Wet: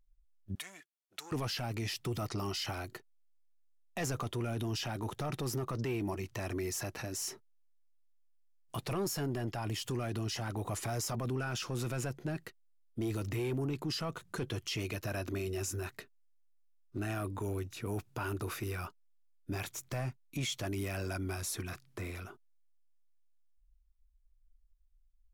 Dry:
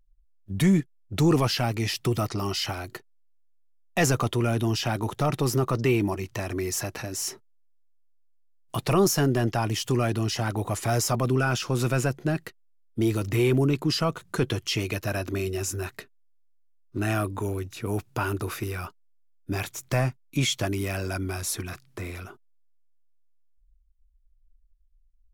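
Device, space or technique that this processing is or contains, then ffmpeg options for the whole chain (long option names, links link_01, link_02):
soft clipper into limiter: -filter_complex "[0:a]asoftclip=type=tanh:threshold=-16dB,alimiter=limit=-23.5dB:level=0:latency=1:release=42,asettb=1/sr,asplit=3[link_01][link_02][link_03];[link_01]atrim=end=0.554[link_04];[link_02]atrim=start=0.55:end=1.32,asetpts=PTS-STARTPTS,afade=type=in:duration=0.004:curve=qsin,afade=type=out:start_time=0.766:duration=0.004:curve=qsin,highpass=1100[link_05];[link_03]atrim=start=1.316[link_06];[link_04][link_05]acrossfade=duration=0.004:curve1=hsin:curve2=qsin[link_07];[link_07][link_06]acrossfade=duration=0.004:curve1=qsin:curve2=hsin,asettb=1/sr,asplit=3[link_08][link_09][link_10];[link_08]atrim=end=9.054[link_11];[link_09]atrim=start=9.05:end=9.85,asetpts=PTS-STARTPTS,afade=type=in:duration=0.004:curve=qsin,afade=type=out:start_time=0.796:duration=0.004:curve=qsin,bandreject=frequency=6000:width=9.7[link_12];[link_10]atrim=start=9.846[link_13];[link_11][link_12]acrossfade=duration=0.004:curve1=hsin:curve2=qsin[link_14];[link_14][link_13]acrossfade=duration=0.004:curve1=qsin:curve2=hsin,volume=-5.5dB"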